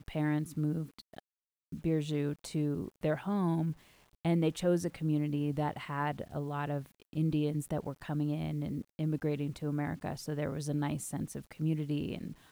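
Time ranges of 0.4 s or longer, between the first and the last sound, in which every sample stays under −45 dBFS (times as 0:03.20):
0:01.19–0:01.72
0:03.73–0:04.25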